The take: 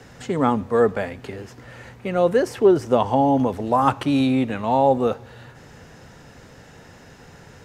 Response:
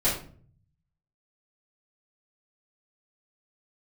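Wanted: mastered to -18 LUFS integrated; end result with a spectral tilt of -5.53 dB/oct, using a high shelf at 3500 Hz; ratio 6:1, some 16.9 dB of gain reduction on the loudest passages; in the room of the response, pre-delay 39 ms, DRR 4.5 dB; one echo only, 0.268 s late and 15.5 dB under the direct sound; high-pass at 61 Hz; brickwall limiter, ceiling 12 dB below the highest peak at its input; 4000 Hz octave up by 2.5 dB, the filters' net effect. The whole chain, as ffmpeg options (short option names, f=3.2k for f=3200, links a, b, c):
-filter_complex "[0:a]highpass=61,highshelf=f=3.5k:g=-5.5,equalizer=f=4k:t=o:g=6.5,acompressor=threshold=-29dB:ratio=6,alimiter=level_in=5dB:limit=-24dB:level=0:latency=1,volume=-5dB,aecho=1:1:268:0.168,asplit=2[a][b];[1:a]atrim=start_sample=2205,adelay=39[c];[b][c]afir=irnorm=-1:irlink=0,volume=-16.5dB[d];[a][d]amix=inputs=2:normalize=0,volume=19.5dB"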